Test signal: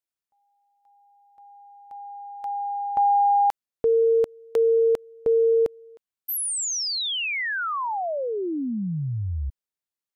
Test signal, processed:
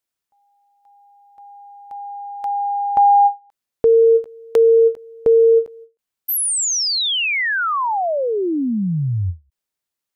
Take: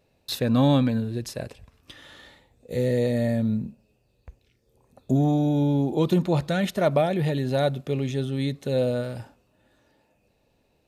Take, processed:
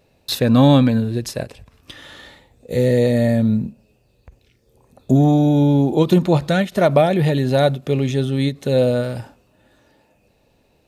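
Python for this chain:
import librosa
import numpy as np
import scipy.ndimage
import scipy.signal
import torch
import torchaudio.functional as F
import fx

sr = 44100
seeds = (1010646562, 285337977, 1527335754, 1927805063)

y = fx.end_taper(x, sr, db_per_s=290.0)
y = y * 10.0 ** (7.5 / 20.0)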